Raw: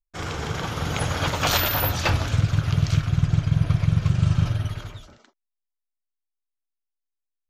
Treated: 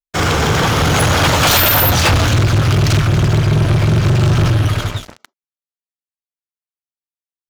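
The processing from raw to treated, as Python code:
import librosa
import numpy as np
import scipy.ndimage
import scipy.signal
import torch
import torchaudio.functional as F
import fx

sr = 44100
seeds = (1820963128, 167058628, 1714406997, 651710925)

y = fx.highpass(x, sr, hz=52.0, slope=6)
y = fx.leveller(y, sr, passes=5)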